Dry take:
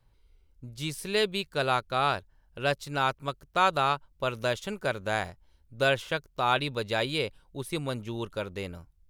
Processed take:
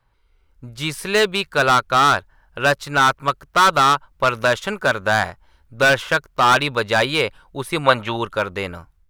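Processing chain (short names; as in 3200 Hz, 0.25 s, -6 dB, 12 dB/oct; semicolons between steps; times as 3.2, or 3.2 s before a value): bell 1300 Hz +11.5 dB 2 oct; hard clip -16.5 dBFS, distortion -7 dB; AGC gain up to 8 dB; spectral gain 7.84–8.17, 500–4500 Hz +8 dB; gain -1.5 dB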